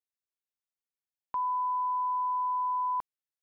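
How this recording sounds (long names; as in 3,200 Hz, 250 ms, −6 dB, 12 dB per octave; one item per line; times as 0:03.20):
background noise floor −95 dBFS
spectral slope −2.5 dB per octave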